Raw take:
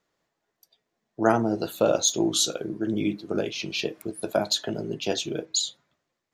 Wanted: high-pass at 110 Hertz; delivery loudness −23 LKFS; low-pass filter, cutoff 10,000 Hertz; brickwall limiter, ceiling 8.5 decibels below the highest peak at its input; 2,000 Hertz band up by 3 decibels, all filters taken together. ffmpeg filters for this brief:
ffmpeg -i in.wav -af "highpass=110,lowpass=10000,equalizer=frequency=2000:width_type=o:gain=4.5,volume=4.5dB,alimiter=limit=-9.5dB:level=0:latency=1" out.wav

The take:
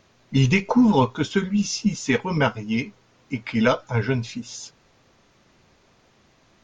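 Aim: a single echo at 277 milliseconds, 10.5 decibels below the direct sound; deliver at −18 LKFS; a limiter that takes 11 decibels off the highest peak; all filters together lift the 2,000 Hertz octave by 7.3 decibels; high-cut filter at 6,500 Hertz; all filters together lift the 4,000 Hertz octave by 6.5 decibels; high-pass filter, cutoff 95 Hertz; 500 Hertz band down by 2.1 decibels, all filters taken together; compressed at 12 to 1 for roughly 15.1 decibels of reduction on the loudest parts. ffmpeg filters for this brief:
ffmpeg -i in.wav -af "highpass=95,lowpass=6500,equalizer=frequency=500:width_type=o:gain=-3,equalizer=frequency=2000:width_type=o:gain=7.5,equalizer=frequency=4000:width_type=o:gain=7,acompressor=threshold=-27dB:ratio=12,alimiter=level_in=1dB:limit=-24dB:level=0:latency=1,volume=-1dB,aecho=1:1:277:0.299,volume=16.5dB" out.wav

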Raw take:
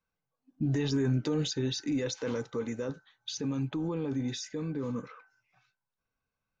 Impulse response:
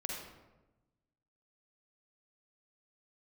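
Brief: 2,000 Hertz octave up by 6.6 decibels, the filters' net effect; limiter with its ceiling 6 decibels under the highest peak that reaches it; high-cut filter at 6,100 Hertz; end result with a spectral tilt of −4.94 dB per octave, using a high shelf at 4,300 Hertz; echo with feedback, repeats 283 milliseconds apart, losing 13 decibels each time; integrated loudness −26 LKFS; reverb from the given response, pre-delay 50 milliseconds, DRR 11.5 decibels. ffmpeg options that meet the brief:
-filter_complex "[0:a]lowpass=6100,equalizer=frequency=2000:width_type=o:gain=7,highshelf=frequency=4300:gain=7,alimiter=limit=-23.5dB:level=0:latency=1,aecho=1:1:283|566|849:0.224|0.0493|0.0108,asplit=2[link_01][link_02];[1:a]atrim=start_sample=2205,adelay=50[link_03];[link_02][link_03]afir=irnorm=-1:irlink=0,volume=-12.5dB[link_04];[link_01][link_04]amix=inputs=2:normalize=0,volume=6.5dB"

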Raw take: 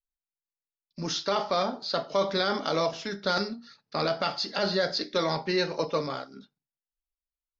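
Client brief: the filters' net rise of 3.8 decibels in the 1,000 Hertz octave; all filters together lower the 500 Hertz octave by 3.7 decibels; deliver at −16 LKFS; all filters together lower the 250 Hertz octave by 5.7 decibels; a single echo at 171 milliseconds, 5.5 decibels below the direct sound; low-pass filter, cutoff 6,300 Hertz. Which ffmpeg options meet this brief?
ffmpeg -i in.wav -af "lowpass=6300,equalizer=frequency=250:width_type=o:gain=-7.5,equalizer=frequency=500:width_type=o:gain=-5.5,equalizer=frequency=1000:width_type=o:gain=7,aecho=1:1:171:0.531,volume=12dB" out.wav

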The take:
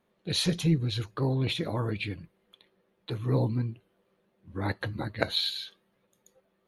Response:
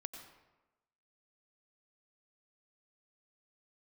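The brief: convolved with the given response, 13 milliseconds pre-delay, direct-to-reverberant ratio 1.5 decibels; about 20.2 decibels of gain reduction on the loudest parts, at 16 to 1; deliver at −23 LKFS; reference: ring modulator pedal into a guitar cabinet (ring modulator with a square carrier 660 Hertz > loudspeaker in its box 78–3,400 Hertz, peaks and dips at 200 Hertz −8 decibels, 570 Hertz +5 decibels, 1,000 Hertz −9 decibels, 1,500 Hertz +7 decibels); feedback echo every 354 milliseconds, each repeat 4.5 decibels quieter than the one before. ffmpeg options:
-filter_complex "[0:a]acompressor=threshold=-40dB:ratio=16,aecho=1:1:354|708|1062|1416|1770|2124|2478|2832|3186:0.596|0.357|0.214|0.129|0.0772|0.0463|0.0278|0.0167|0.01,asplit=2[link_01][link_02];[1:a]atrim=start_sample=2205,adelay=13[link_03];[link_02][link_03]afir=irnorm=-1:irlink=0,volume=1.5dB[link_04];[link_01][link_04]amix=inputs=2:normalize=0,aeval=exprs='val(0)*sgn(sin(2*PI*660*n/s))':channel_layout=same,highpass=78,equalizer=frequency=200:width_type=q:width=4:gain=-8,equalizer=frequency=570:width_type=q:width=4:gain=5,equalizer=frequency=1000:width_type=q:width=4:gain=-9,equalizer=frequency=1500:width_type=q:width=4:gain=7,lowpass=frequency=3400:width=0.5412,lowpass=frequency=3400:width=1.3066,volume=19.5dB"

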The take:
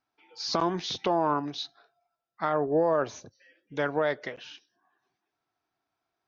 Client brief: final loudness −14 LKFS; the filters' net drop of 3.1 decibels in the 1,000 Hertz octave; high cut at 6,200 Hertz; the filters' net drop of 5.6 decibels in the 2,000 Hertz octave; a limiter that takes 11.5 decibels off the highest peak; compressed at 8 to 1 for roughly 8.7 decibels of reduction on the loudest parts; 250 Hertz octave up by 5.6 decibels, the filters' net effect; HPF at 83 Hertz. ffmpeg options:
ffmpeg -i in.wav -af "highpass=83,lowpass=6200,equalizer=frequency=250:width_type=o:gain=8.5,equalizer=frequency=1000:width_type=o:gain=-3,equalizer=frequency=2000:width_type=o:gain=-6.5,acompressor=threshold=-26dB:ratio=8,volume=24dB,alimiter=limit=-4dB:level=0:latency=1" out.wav

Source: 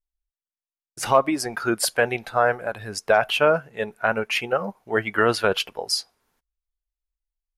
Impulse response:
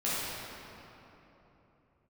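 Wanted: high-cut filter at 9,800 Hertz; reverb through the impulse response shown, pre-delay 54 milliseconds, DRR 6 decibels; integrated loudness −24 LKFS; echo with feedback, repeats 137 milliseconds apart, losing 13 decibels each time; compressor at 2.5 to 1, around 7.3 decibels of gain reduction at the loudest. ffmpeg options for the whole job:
-filter_complex "[0:a]lowpass=9800,acompressor=threshold=-23dB:ratio=2.5,aecho=1:1:137|274|411:0.224|0.0493|0.0108,asplit=2[link_01][link_02];[1:a]atrim=start_sample=2205,adelay=54[link_03];[link_02][link_03]afir=irnorm=-1:irlink=0,volume=-15.5dB[link_04];[link_01][link_04]amix=inputs=2:normalize=0,volume=2.5dB"

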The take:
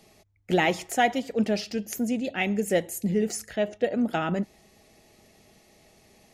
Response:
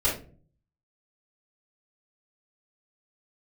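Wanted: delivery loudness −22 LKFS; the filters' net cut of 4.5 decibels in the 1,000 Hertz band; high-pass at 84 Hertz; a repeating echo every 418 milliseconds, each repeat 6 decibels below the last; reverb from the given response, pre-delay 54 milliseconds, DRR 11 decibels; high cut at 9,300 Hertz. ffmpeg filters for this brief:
-filter_complex "[0:a]highpass=84,lowpass=9300,equalizer=frequency=1000:width_type=o:gain=-7.5,aecho=1:1:418|836|1254|1672|2090|2508:0.501|0.251|0.125|0.0626|0.0313|0.0157,asplit=2[link_01][link_02];[1:a]atrim=start_sample=2205,adelay=54[link_03];[link_02][link_03]afir=irnorm=-1:irlink=0,volume=-22.5dB[link_04];[link_01][link_04]amix=inputs=2:normalize=0,volume=5dB"

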